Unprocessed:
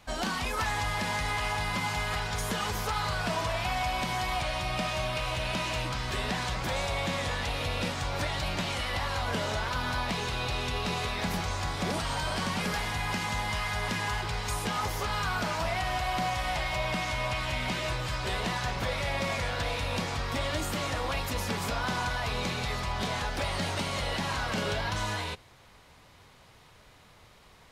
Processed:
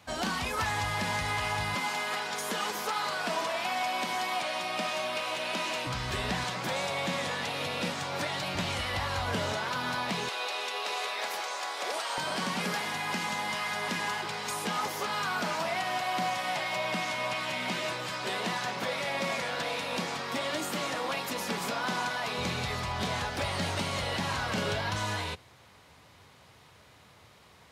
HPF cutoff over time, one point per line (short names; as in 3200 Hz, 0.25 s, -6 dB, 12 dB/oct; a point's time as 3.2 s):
HPF 24 dB/oct
65 Hz
from 1.75 s 220 Hz
from 5.87 s 55 Hz
from 6.44 s 140 Hz
from 8.55 s 60 Hz
from 9.53 s 140 Hz
from 10.29 s 440 Hz
from 12.18 s 170 Hz
from 22.38 s 69 Hz